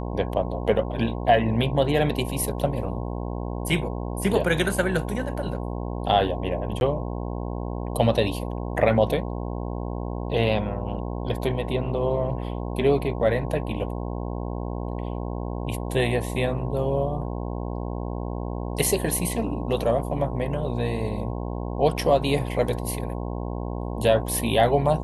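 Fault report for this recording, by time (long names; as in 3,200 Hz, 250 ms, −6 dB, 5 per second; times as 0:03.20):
mains buzz 60 Hz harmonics 18 −30 dBFS
0:06.80–0:06.81: drop-out 11 ms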